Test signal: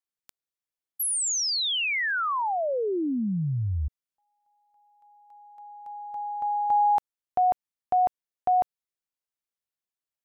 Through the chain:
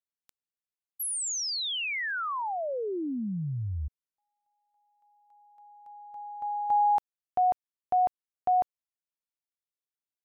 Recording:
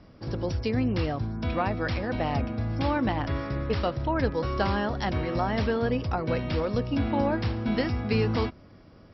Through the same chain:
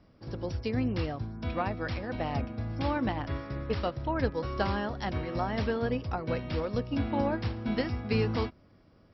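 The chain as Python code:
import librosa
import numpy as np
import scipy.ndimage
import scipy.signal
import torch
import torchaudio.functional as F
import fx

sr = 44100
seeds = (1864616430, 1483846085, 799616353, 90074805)

y = fx.upward_expand(x, sr, threshold_db=-34.0, expansion=1.5)
y = y * 10.0 ** (-2.0 / 20.0)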